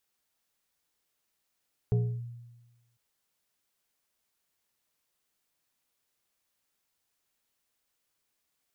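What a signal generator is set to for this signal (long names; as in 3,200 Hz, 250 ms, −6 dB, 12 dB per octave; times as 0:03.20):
two-operator FM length 1.05 s, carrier 119 Hz, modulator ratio 2.5, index 0.61, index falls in 0.30 s linear, decay 1.19 s, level −20.5 dB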